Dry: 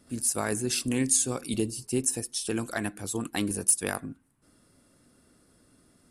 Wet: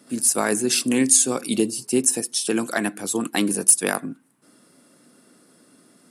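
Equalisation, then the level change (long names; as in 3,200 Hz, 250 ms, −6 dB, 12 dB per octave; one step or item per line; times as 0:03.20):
high-pass filter 170 Hz 24 dB per octave
+8.0 dB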